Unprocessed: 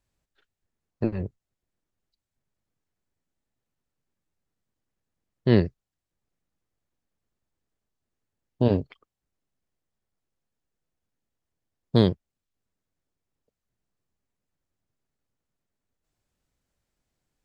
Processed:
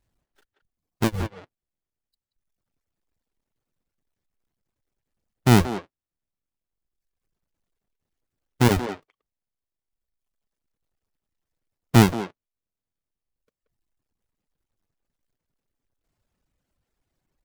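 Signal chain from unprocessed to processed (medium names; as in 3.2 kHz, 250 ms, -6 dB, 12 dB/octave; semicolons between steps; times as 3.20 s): square wave that keeps the level; reverb removal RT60 1.3 s; speakerphone echo 180 ms, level -6 dB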